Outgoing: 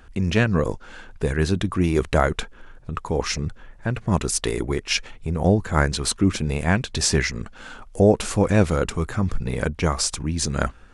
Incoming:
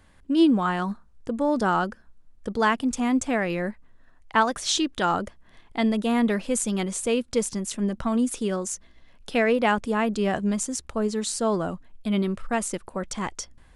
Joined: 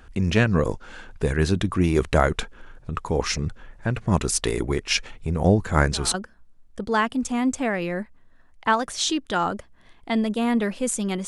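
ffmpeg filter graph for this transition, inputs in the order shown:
-filter_complex "[1:a]asplit=2[s0][s1];[0:a]apad=whole_dur=11.27,atrim=end=11.27,atrim=end=6.142[s2];[s1]atrim=start=1.818:end=6.95[s3];[s0]atrim=start=1.42:end=1.82,asetpts=PTS-STARTPTS,volume=0.15,afade=t=in:d=0.004:c=hsin,afade=t=out:st=0.396:d=0.004:c=hsin,adelay=5740[s4];[s2][s3]acrossfade=d=0.004:c1=hsin:c2=hsin[s5];[s5][s4]amix=inputs=2:normalize=0"

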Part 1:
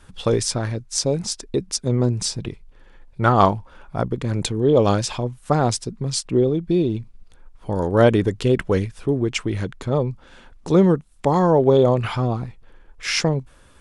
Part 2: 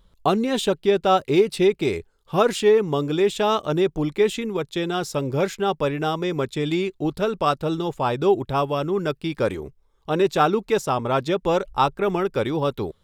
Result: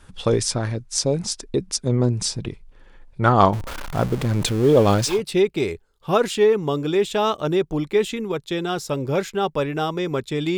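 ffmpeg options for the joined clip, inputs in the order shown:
-filter_complex "[0:a]asettb=1/sr,asplit=3[s0][s1][s2];[s0]atrim=end=3.534[s3];[s1]atrim=start=3.53:end=5.22,asetpts=PTS-STARTPTS,afade=t=in:d=0.004:c=qsin,afade=t=out:st=1.686:d=0.004:c=qsin,aeval=exprs='val(0)+0.5*0.0473*sgn(val(0))':c=same[s4];[s2]atrim=start=5.216[s5];[s3][s4]acrossfade=d=0.004:c1=hsin:c2=qsin[s6];[s6][s5]acrossfade=d=0.004:c1=qsin:c2=hsin,apad=whole_dur=10.57,atrim=end=10.57,atrim=end=5.22,asetpts=PTS-STARTPTS[s7];[1:a]atrim=start=1.31:end=6.82,asetpts=PTS-STARTPTS[s8];[s7][s8]acrossfade=d=0.16:c1=tri:c2=tri"

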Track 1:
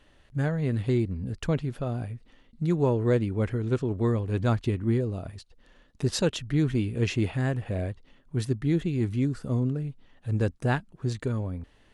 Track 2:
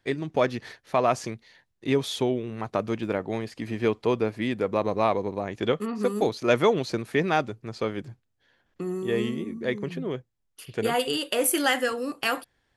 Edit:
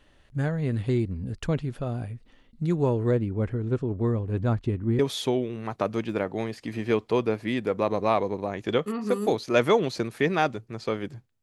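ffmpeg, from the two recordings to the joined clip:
-filter_complex "[0:a]asettb=1/sr,asplit=3[s0][s1][s2];[s0]atrim=end=3.114[s3];[s1]atrim=start=3.11:end=4.99,asetpts=PTS-STARTPTS,afade=t=in:d=0.004:c=qsin,afade=t=out:st=1.876:d=0.004:c=qsin,highshelf=f=2100:g=-10.5[s4];[s2]atrim=start=4.986[s5];[s3][s4]acrossfade=d=0.004:c1=hsin:c2=qsin[s6];[s6][s5]acrossfade=d=0.004:c1=qsin:c2=hsin,apad=whole_dur=11.42,atrim=end=11.42,atrim=end=4.992[s7];[1:a]atrim=start=1.928:end=8.36[s8];[s7][s8]acrossfade=d=0.004:c1=hsin:c2=hsin"

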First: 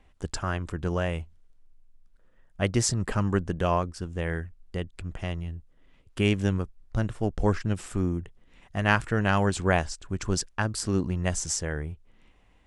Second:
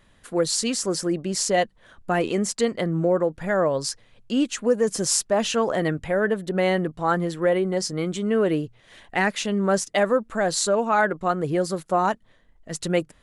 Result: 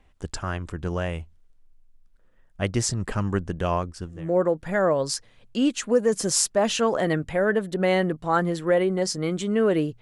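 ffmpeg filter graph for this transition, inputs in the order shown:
-filter_complex "[0:a]apad=whole_dur=10.01,atrim=end=10.01,atrim=end=4.37,asetpts=PTS-STARTPTS[s0];[1:a]atrim=start=2.8:end=8.76,asetpts=PTS-STARTPTS[s1];[s0][s1]acrossfade=d=0.32:c1=qua:c2=qua"

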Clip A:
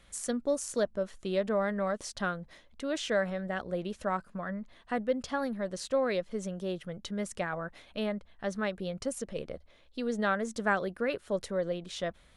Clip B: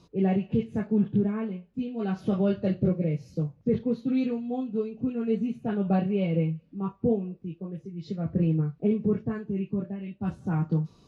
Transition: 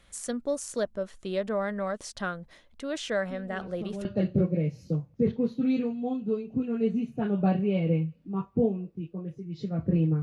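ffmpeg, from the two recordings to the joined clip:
-filter_complex "[1:a]asplit=2[s0][s1];[0:a]apad=whole_dur=10.22,atrim=end=10.22,atrim=end=4.052[s2];[s1]atrim=start=2.518:end=8.69[s3];[s0]atrim=start=1.69:end=2.52,asetpts=PTS-STARTPTS,volume=0.237,afade=t=in:d=0.004:c=hsin,afade=t=out:st=0.826:d=0.004:c=hsin,adelay=3220[s4];[s2][s3]acrossfade=d=0.004:c1=hsin:c2=hsin[s5];[s5][s4]amix=inputs=2:normalize=0"

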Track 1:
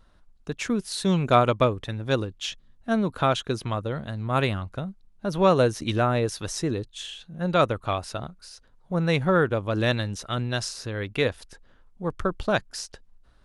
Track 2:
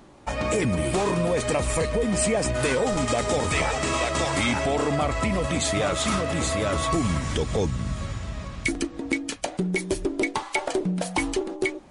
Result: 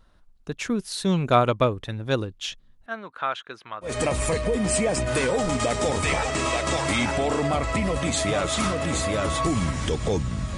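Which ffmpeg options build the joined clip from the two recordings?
-filter_complex "[0:a]asettb=1/sr,asplit=3[s0][s1][s2];[s0]atrim=end=2.864[s3];[s1]atrim=start=2.86:end=3.97,asetpts=PTS-STARTPTS,afade=t=in:d=0.004:c=qsin,afade=t=out:st=1.106:d=0.004:c=qsin,bandpass=f=1600:t=q:w=1.2:csg=0[s4];[s2]atrim=start=3.966[s5];[s3][s4]acrossfade=d=0.004:c1=hsin:c2=qsin[s6];[s6][s5]acrossfade=d=0.004:c1=qsin:c2=hsin,apad=whole_dur=10.57,atrim=end=10.57,atrim=end=3.97,asetpts=PTS-STARTPTS[s7];[1:a]atrim=start=1.29:end=8.05,asetpts=PTS-STARTPTS[s8];[s7][s8]acrossfade=d=0.16:c1=tri:c2=tri"

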